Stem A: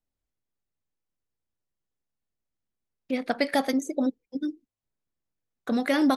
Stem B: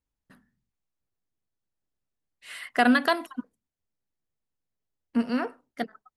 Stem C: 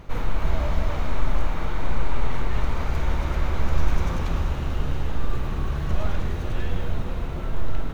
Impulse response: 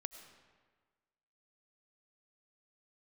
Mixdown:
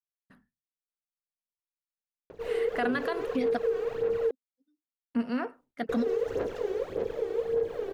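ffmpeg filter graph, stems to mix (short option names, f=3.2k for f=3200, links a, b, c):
-filter_complex "[0:a]aecho=1:1:4.2:0.65,adelay=250,volume=-0.5dB[a];[1:a]agate=range=-33dB:threshold=-59dB:ratio=3:detection=peak,bass=f=250:g=1,treble=f=4k:g=-8,volume=-3dB,asplit=2[b][c];[2:a]aeval=exprs='val(0)*sin(2*PI*460*n/s)':c=same,aphaser=in_gain=1:out_gain=1:delay=2.7:decay=0.66:speed=1.7:type=sinusoidal,adelay=2300,volume=-10dB,asplit=3[d][e][f];[d]atrim=end=4.31,asetpts=PTS-STARTPTS,afade=t=out:st=4.306:d=0.004:c=hsin[g];[e]atrim=start=4.31:end=5.89,asetpts=PTS-STARTPTS,volume=0[h];[f]atrim=start=5.89,asetpts=PTS-STARTPTS,afade=t=in:d=0.004:c=hsin[i];[g][h][i]concat=n=3:v=0:a=1[j];[c]apad=whole_len=283098[k];[a][k]sidechaingate=range=-45dB:threshold=-54dB:ratio=16:detection=peak[l];[l][b][j]amix=inputs=3:normalize=0,alimiter=limit=-20dB:level=0:latency=1:release=83"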